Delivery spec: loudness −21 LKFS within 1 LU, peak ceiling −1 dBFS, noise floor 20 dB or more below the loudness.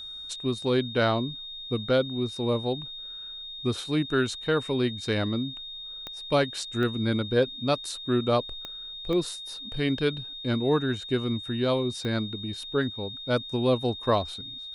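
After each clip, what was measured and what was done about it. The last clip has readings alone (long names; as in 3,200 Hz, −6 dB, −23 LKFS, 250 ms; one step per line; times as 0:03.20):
number of clicks 5; interfering tone 3,700 Hz; level of the tone −37 dBFS; integrated loudness −28.0 LKFS; sample peak −10.5 dBFS; target loudness −21.0 LKFS
→ click removal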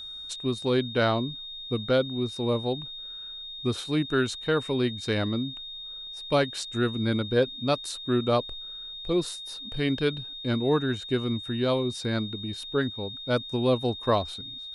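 number of clicks 0; interfering tone 3,700 Hz; level of the tone −37 dBFS
→ notch filter 3,700 Hz, Q 30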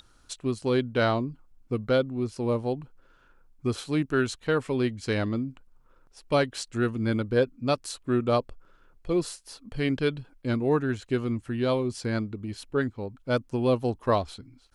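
interfering tone none found; integrated loudness −28.0 LKFS; sample peak −10.5 dBFS; target loudness −21.0 LKFS
→ level +7 dB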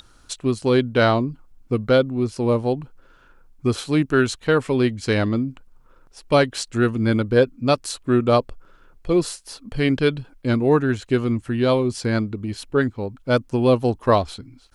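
integrated loudness −21.0 LKFS; sample peak −3.5 dBFS; background noise floor −54 dBFS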